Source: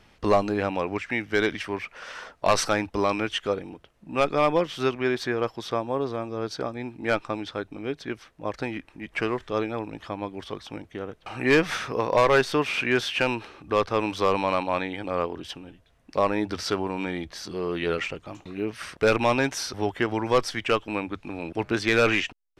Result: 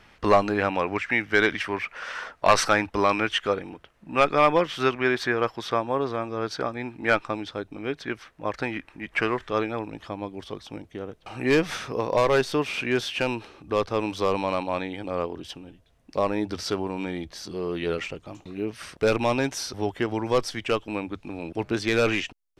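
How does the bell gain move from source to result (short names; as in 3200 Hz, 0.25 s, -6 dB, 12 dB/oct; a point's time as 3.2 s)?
bell 1600 Hz 1.8 oct
7.09 s +6 dB
7.63 s -4 dB
7.86 s +5 dB
9.53 s +5 dB
10.22 s -4.5 dB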